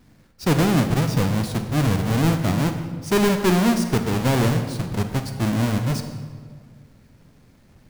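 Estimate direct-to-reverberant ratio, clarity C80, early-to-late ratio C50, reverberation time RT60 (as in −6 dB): 6.5 dB, 9.0 dB, 7.5 dB, 1.8 s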